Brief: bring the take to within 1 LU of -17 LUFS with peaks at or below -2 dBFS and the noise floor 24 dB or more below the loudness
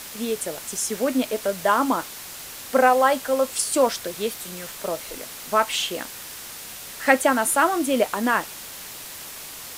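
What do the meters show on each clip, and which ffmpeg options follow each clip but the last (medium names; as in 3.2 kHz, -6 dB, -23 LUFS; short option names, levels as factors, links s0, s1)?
noise floor -38 dBFS; noise floor target -47 dBFS; loudness -22.5 LUFS; peak level -2.5 dBFS; loudness target -17.0 LUFS
-> -af "afftdn=nr=9:nf=-38"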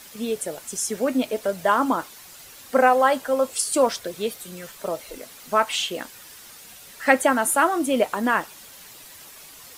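noise floor -45 dBFS; noise floor target -47 dBFS
-> -af "afftdn=nr=6:nf=-45"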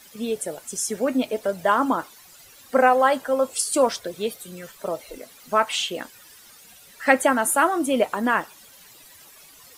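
noise floor -49 dBFS; loudness -22.5 LUFS; peak level -2.5 dBFS; loudness target -17.0 LUFS
-> -af "volume=1.88,alimiter=limit=0.794:level=0:latency=1"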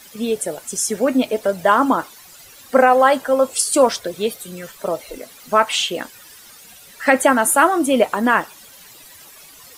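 loudness -17.5 LUFS; peak level -2.0 dBFS; noise floor -44 dBFS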